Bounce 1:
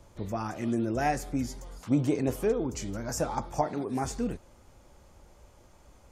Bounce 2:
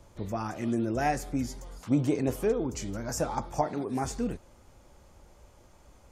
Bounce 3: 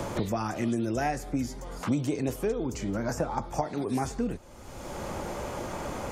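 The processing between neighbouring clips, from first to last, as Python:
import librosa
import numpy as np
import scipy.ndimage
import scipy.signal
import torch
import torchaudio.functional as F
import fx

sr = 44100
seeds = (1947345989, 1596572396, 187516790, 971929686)

y1 = x
y2 = fx.band_squash(y1, sr, depth_pct=100)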